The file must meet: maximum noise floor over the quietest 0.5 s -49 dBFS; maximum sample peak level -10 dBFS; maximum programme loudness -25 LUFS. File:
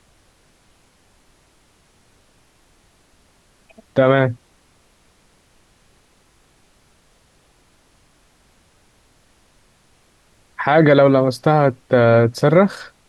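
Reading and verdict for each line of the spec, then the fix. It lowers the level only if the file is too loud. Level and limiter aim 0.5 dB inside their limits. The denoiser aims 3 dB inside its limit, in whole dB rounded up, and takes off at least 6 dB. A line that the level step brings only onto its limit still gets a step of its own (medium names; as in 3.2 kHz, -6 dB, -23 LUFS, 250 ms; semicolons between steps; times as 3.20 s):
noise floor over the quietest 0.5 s -57 dBFS: pass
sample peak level -2.0 dBFS: fail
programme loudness -15.5 LUFS: fail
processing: trim -10 dB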